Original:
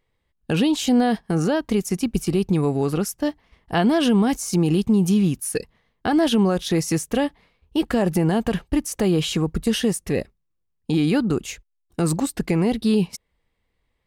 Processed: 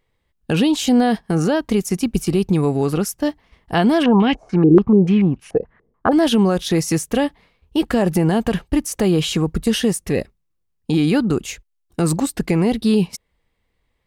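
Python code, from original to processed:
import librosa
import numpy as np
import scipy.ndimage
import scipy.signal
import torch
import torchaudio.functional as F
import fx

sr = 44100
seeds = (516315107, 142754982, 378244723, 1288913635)

y = fx.filter_held_lowpass(x, sr, hz=6.9, low_hz=390.0, high_hz=2800.0, at=(4.02, 6.11), fade=0.02)
y = y * 10.0 ** (3.0 / 20.0)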